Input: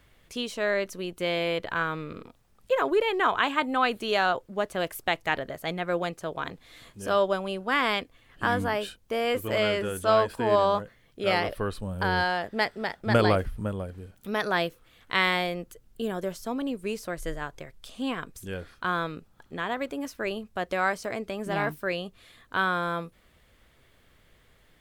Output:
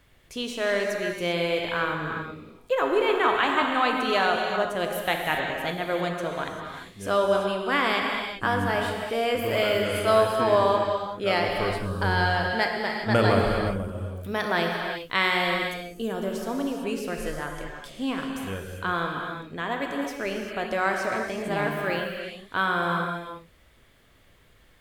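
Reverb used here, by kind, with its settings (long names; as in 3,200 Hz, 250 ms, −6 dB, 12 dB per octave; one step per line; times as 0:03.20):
reverb whose tail is shaped and stops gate 420 ms flat, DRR 1 dB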